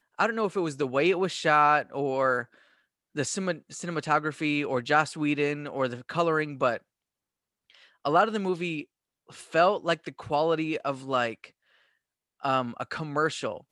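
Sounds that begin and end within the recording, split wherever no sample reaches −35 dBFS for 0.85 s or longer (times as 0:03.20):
0:08.05–0:11.44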